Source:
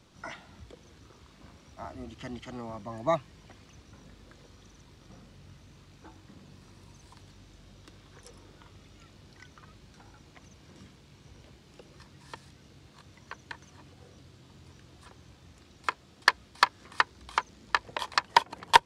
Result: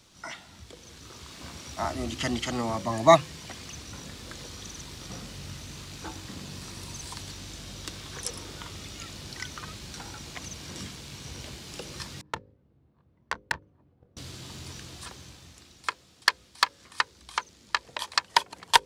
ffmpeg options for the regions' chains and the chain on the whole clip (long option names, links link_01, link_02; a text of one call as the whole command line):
ffmpeg -i in.wav -filter_complex "[0:a]asettb=1/sr,asplit=3[link_01][link_02][link_03];[link_01]atrim=end=12.214[link_04];[link_02]atrim=start=12.21:end=14.17,asetpts=PTS-STARTPTS,afade=type=in:duration=0.004:curve=qsin,afade=type=out:start_time=1.956:duration=0.004:curve=qsin,agate=range=-19dB:threshold=-49dB:ratio=16:release=100:detection=peak,asplit=2[link_05][link_06];[link_06]adelay=27,volume=-14dB[link_07];[link_05][link_07]amix=inputs=2:normalize=0,atrim=end_sample=86436,adynamicsmooth=sensitivity=4.5:basefreq=750[link_08];[link_03]atrim=start=14.166[link_09];[link_04][link_08]acrossfade=duration=0.004:curve1=hsin:curve2=qsin[link_10];[link_10][link_09]acrossfade=duration=0.004:curve1=qsin:curve2=hsin,highshelf=frequency=3000:gain=11.5,bandreject=frequency=51.07:width_type=h:width=4,bandreject=frequency=102.14:width_type=h:width=4,bandreject=frequency=153.21:width_type=h:width=4,bandreject=frequency=204.28:width_type=h:width=4,bandreject=frequency=255.35:width_type=h:width=4,bandreject=frequency=306.42:width_type=h:width=4,bandreject=frequency=357.49:width_type=h:width=4,bandreject=frequency=408.56:width_type=h:width=4,bandreject=frequency=459.63:width_type=h:width=4,bandreject=frequency=510.7:width_type=h:width=4,bandreject=frequency=561.77:width_type=h:width=4,dynaudnorm=framelen=330:gausssize=7:maxgain=12dB,volume=-1dB" out.wav